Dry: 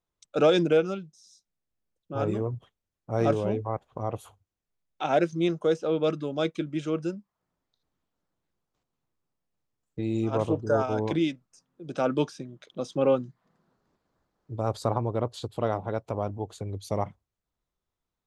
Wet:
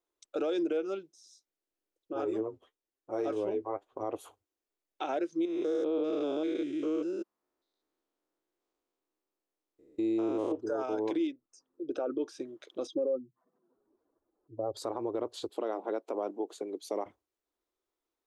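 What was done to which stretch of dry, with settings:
0:02.13–0:04.01: flanger 1 Hz, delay 5.3 ms, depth 7.1 ms, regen +38%
0:05.45–0:10.52: spectrum averaged block by block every 200 ms
0:11.27–0:12.28: spectral envelope exaggerated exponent 1.5
0:12.87–0:14.77: expanding power law on the bin magnitudes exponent 2
0:15.49–0:17.06: elliptic high-pass filter 190 Hz
whole clip: low shelf with overshoot 230 Hz −12.5 dB, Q 3; downward compressor 4 to 1, threshold −25 dBFS; brickwall limiter −21.5 dBFS; level −2 dB

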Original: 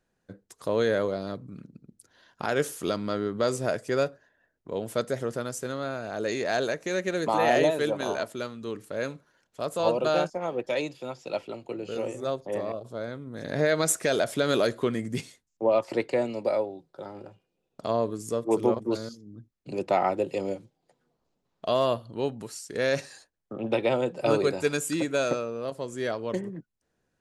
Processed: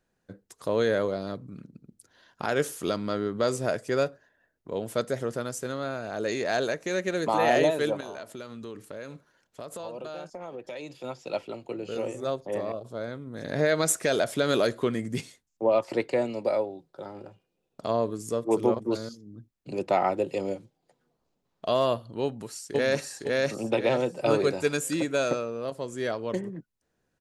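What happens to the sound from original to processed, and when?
0:08.00–0:11.04: downward compressor, threshold −35 dBFS
0:22.23–0:23.03: delay throw 510 ms, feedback 35%, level −0.5 dB

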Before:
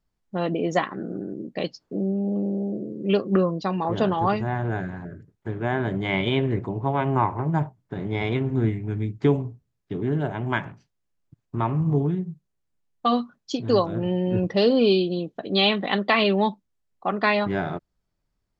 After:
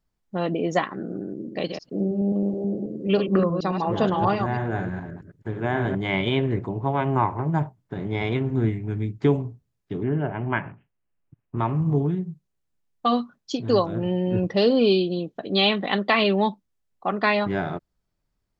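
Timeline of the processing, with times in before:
0:01.36–0:05.95: delay that plays each chunk backwards 107 ms, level −6 dB
0:10.03–0:11.57: Butterworth low-pass 3,000 Hz 72 dB per octave

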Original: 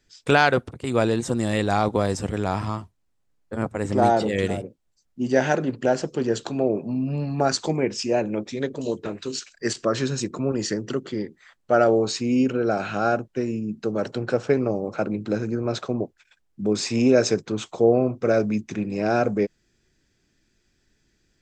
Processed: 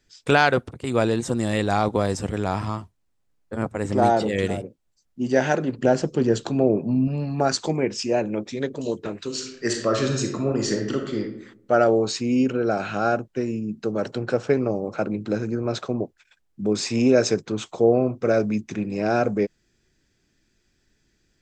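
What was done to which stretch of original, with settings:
0:05.78–0:07.08: low-shelf EQ 330 Hz +7 dB
0:09.26–0:11.20: thrown reverb, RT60 0.81 s, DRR 2.5 dB

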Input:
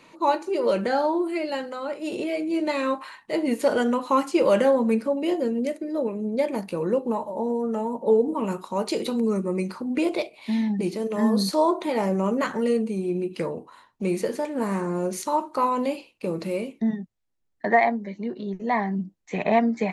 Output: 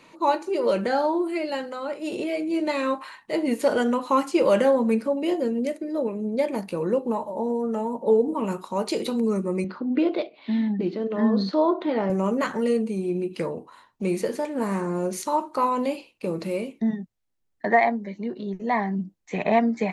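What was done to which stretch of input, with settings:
0:09.64–0:12.10: loudspeaker in its box 150–3,800 Hz, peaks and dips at 280 Hz +5 dB, 910 Hz −4 dB, 1,500 Hz +3 dB, 2,400 Hz −7 dB

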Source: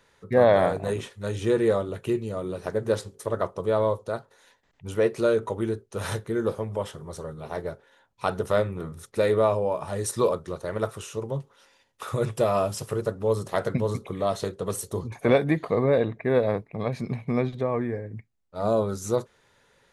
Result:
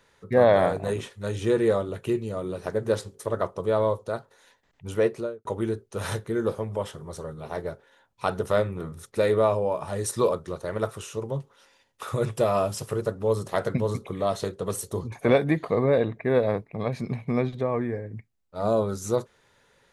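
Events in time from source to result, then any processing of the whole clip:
0:05.01–0:05.45: fade out and dull

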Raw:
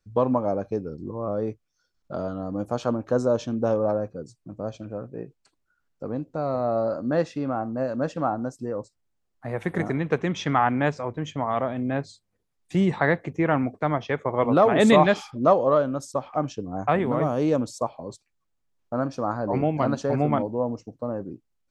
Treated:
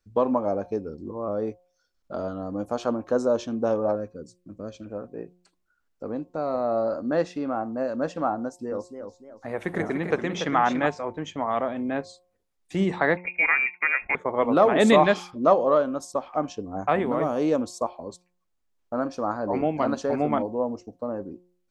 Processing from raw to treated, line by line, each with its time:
0:03.95–0:04.86: parametric band 800 Hz −13.5 dB 0.8 octaves
0:08.43–0:10.87: feedback echo with a swinging delay time 289 ms, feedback 38%, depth 166 cents, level −7.5 dB
0:13.17–0:14.15: voice inversion scrambler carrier 2,600 Hz
whole clip: parametric band 130 Hz −14.5 dB 0.47 octaves; hum removal 178.7 Hz, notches 6

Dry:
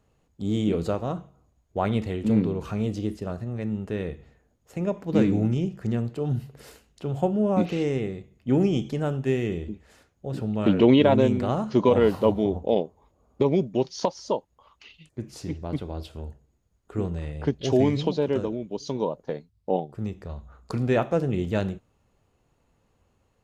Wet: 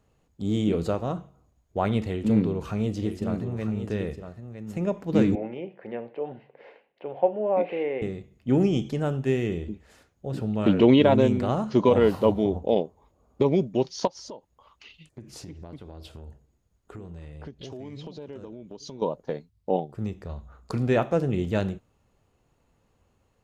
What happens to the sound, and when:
0:02.03–0:04.78: single-tap delay 960 ms −9 dB
0:05.35–0:08.02: loudspeaker in its box 470–2,500 Hz, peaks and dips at 530 Hz +8 dB, 850 Hz +4 dB, 1,300 Hz −10 dB, 2,200 Hz +4 dB
0:14.07–0:19.02: downward compressor, threshold −37 dBFS

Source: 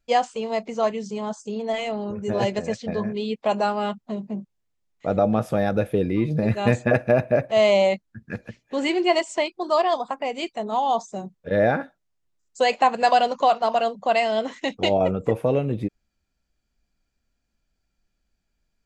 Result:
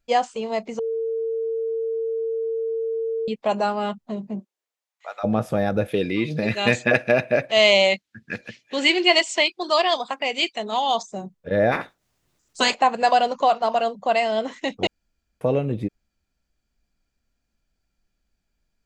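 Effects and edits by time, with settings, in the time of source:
0:00.79–0:03.28: beep over 452 Hz −22.5 dBFS
0:04.39–0:05.23: high-pass filter 270 Hz → 1,100 Hz 24 dB per octave
0:05.88–0:11.03: meter weighting curve D
0:11.71–0:12.73: ceiling on every frequency bin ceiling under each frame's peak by 24 dB
0:14.87–0:15.41: fill with room tone

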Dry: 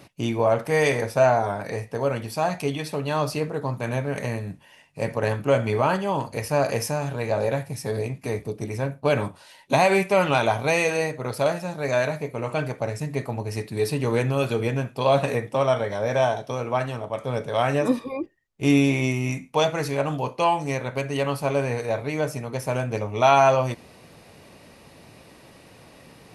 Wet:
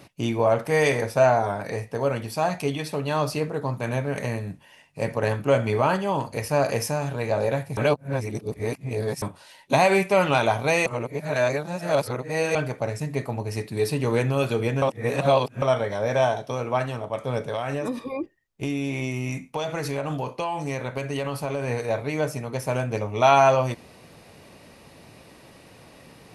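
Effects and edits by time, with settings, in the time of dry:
0:07.77–0:09.22: reverse
0:10.86–0:12.55: reverse
0:14.82–0:15.62: reverse
0:17.43–0:21.68: downward compressor 10 to 1, threshold −23 dBFS

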